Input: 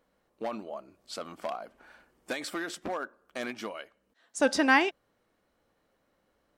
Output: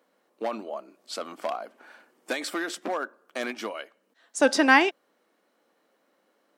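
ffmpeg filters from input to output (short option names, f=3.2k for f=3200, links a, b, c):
-af "highpass=f=230:w=0.5412,highpass=f=230:w=1.3066,volume=4.5dB"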